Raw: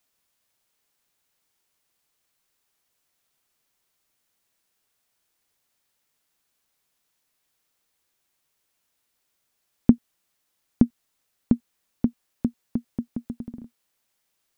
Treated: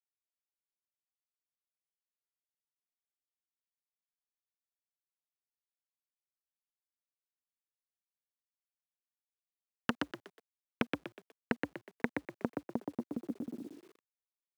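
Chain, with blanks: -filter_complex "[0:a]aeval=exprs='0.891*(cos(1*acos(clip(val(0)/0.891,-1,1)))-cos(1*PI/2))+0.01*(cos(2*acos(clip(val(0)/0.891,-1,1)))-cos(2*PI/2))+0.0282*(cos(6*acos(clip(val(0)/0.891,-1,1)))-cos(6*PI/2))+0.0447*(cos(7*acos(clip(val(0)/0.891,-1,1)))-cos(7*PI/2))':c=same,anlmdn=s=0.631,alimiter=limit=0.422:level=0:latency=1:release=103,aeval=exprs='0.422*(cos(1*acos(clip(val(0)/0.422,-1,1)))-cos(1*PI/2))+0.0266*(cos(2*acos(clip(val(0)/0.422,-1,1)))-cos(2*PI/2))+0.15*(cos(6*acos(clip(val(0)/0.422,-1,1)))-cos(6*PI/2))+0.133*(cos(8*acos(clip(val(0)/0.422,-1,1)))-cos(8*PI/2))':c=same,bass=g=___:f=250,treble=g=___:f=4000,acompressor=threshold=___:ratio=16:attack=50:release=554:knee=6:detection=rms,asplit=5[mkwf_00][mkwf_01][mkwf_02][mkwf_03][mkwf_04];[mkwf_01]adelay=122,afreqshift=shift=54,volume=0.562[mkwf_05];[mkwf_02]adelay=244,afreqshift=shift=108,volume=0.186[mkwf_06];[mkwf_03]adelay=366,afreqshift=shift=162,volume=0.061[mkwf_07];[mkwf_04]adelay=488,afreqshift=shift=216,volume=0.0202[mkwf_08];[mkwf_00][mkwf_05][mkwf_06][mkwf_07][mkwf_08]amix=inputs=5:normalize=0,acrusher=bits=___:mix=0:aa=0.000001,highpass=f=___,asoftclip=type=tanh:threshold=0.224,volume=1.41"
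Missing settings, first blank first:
-5, 11, 0.0224, 10, 160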